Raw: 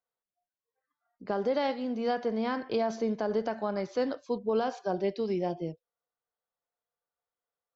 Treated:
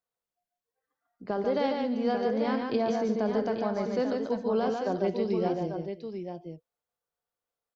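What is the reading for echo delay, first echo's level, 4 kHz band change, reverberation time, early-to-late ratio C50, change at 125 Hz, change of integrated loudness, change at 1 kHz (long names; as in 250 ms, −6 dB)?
68 ms, −18.0 dB, +0.5 dB, no reverb audible, no reverb audible, +4.0 dB, +2.0 dB, +1.5 dB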